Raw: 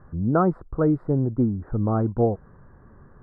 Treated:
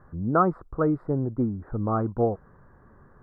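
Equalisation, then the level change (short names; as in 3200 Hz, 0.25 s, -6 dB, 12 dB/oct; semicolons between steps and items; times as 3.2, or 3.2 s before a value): dynamic EQ 1200 Hz, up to +6 dB, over -44 dBFS, Q 4; low shelf 380 Hz -5.5 dB; 0.0 dB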